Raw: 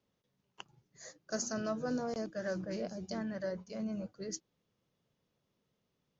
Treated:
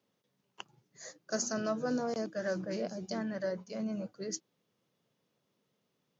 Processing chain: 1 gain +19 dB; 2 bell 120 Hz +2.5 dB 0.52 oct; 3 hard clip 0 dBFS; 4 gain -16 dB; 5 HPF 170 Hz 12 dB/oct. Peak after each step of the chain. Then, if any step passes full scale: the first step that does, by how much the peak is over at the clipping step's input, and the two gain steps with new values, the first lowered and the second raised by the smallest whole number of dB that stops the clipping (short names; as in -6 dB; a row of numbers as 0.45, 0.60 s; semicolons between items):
-5.0, -5.0, -5.0, -21.0, -20.5 dBFS; no overload